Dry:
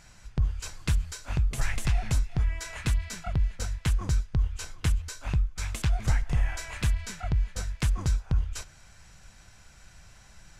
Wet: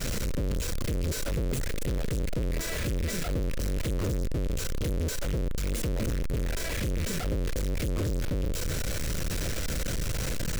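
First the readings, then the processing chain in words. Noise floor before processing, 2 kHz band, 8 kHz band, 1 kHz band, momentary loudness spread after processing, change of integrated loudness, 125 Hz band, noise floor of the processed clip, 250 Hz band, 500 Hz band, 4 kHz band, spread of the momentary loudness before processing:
−54 dBFS, +0.5 dB, +3.5 dB, −1.5 dB, 2 LU, −1.0 dB, −1.5 dB, −31 dBFS, +6.0 dB, +11.5 dB, +3.5 dB, 5 LU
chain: sign of each sample alone
downward expander −21 dBFS
low shelf with overshoot 640 Hz +6.5 dB, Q 3
level +6.5 dB

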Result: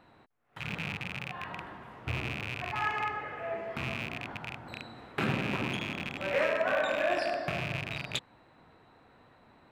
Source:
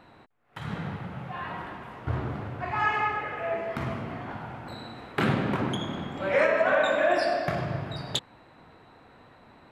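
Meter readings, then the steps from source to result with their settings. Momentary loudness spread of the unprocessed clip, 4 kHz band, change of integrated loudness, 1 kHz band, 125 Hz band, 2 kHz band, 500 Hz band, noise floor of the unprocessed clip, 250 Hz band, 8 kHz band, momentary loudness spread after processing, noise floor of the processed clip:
16 LU, −2.0 dB, −5.0 dB, −6.0 dB, −5.5 dB, −3.5 dB, −6.0 dB, −55 dBFS, −6.0 dB, can't be measured, 12 LU, −61 dBFS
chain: loose part that buzzes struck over −38 dBFS, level −18 dBFS
level −6 dB

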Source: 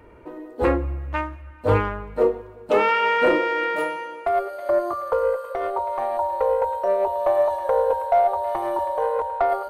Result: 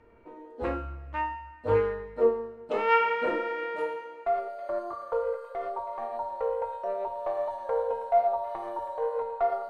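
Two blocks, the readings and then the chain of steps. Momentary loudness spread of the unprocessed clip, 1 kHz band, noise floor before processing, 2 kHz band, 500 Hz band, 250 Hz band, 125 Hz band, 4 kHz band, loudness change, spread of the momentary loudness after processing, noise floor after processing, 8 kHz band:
9 LU, −7.0 dB, −43 dBFS, −8.5 dB, −7.0 dB, −11.0 dB, −11.5 dB, −9.5 dB, −7.5 dB, 10 LU, −48 dBFS, can't be measured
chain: high-frequency loss of the air 61 metres
tuned comb filter 230 Hz, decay 0.8 s, mix 90%
level +7 dB

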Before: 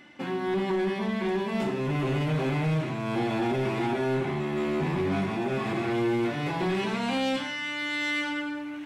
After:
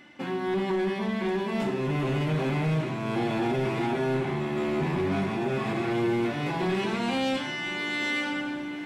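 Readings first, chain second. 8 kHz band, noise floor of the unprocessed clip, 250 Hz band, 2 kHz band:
0.0 dB, −35 dBFS, 0.0 dB, 0.0 dB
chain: feedback delay with all-pass diffusion 1,073 ms, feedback 46%, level −14 dB

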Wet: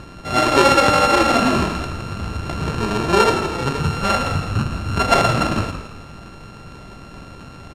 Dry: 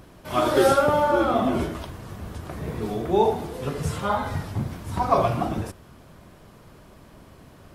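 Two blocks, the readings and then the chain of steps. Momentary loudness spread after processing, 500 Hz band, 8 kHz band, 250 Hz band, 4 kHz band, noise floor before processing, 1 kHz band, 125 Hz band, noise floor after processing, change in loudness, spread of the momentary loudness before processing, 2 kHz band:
14 LU, +2.5 dB, +10.5 dB, +5.5 dB, +13.0 dB, −50 dBFS, +6.5 dB, +7.0 dB, −39 dBFS, +6.0 dB, 17 LU, +11.0 dB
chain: samples sorted by size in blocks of 32 samples
in parallel at +2 dB: downward compressor, threshold −33 dBFS, peak gain reduction 18 dB
on the sum: high-frequency loss of the air 66 metres
echo with shifted repeats 165 ms, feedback 33%, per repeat −54 Hz, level −9.5 dB
level +3.5 dB

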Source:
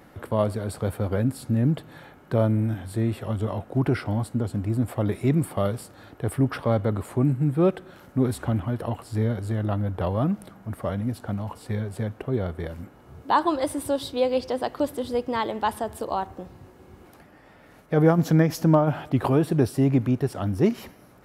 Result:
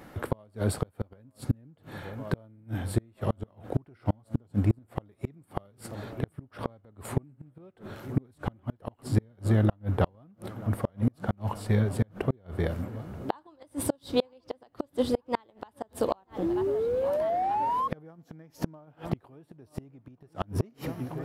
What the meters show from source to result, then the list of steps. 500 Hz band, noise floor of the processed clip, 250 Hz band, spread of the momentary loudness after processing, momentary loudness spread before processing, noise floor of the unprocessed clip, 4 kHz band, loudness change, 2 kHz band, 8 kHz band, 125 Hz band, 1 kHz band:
−6.0 dB, −66 dBFS, −8.0 dB, 16 LU, 11 LU, −52 dBFS, −5.5 dB, −6.5 dB, −6.5 dB, −3.5 dB, −6.0 dB, −4.5 dB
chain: sound drawn into the spectrogram rise, 0:16.42–0:17.88, 320–1,100 Hz −31 dBFS
in parallel at −10 dB: slack as between gear wheels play −31 dBFS
on the sum: delay with a low-pass on its return 932 ms, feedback 73%, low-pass 3,700 Hz, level −21 dB
gate with flip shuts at −15 dBFS, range −36 dB
level +2 dB

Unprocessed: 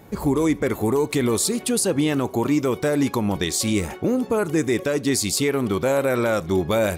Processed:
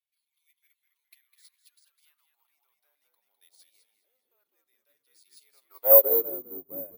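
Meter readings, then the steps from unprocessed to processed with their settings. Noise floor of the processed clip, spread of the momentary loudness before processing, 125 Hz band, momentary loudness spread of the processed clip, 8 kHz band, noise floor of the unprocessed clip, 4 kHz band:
−84 dBFS, 2 LU, below −40 dB, 21 LU, below −30 dB, −39 dBFS, below −30 dB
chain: dynamic equaliser 3,400 Hz, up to −6 dB, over −47 dBFS, Q 3
high-pass filter sweep 2,500 Hz → 550 Hz, 0:00.55–0:03.48
in parallel at −6 dB: soft clipping −19 dBFS, distortion −8 dB
on the sum: band-pass filter sweep 3,700 Hz → 280 Hz, 0:05.46–0:06.12
bad sample-rate conversion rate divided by 3×, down filtered, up zero stuff
on a send: echo with shifted repeats 205 ms, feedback 40%, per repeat −95 Hz, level −4 dB
on the sum: expander for the loud parts 2.5 to 1, over −31 dBFS
level −4 dB

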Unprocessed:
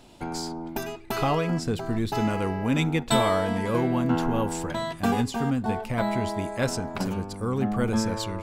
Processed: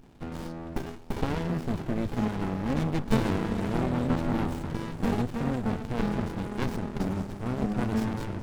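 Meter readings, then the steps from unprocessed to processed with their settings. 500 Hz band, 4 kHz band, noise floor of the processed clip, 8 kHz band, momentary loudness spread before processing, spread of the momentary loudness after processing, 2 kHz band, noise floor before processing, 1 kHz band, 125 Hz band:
−6.0 dB, −9.5 dB, −41 dBFS, −12.5 dB, 8 LU, 10 LU, −6.0 dB, −43 dBFS, −7.0 dB, −2.0 dB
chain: feedback delay with all-pass diffusion 527 ms, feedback 54%, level −14.5 dB
windowed peak hold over 65 samples

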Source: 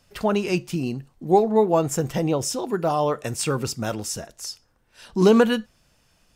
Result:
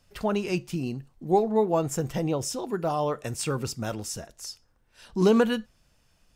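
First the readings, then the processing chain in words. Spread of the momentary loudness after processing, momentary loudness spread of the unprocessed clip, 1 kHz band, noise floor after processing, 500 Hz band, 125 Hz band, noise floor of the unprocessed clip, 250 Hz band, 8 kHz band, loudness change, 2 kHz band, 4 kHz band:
14 LU, 13 LU, −5.0 dB, −66 dBFS, −5.0 dB, −3.5 dB, −63 dBFS, −4.5 dB, −5.0 dB, −4.5 dB, −5.0 dB, −5.0 dB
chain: low-shelf EQ 74 Hz +7 dB
level −5 dB

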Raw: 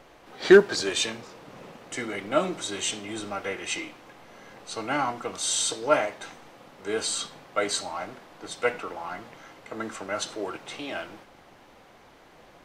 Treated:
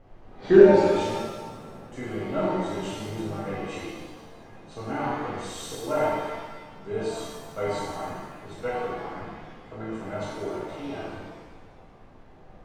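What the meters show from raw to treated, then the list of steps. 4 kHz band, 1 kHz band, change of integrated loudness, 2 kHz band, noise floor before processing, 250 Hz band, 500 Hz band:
−10.5 dB, +1.0 dB, +1.0 dB, −6.5 dB, −54 dBFS, +3.5 dB, +2.5 dB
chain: spectral tilt −4 dB per octave
reverb with rising layers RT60 1.3 s, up +7 semitones, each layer −8 dB, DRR −7.5 dB
level −12 dB

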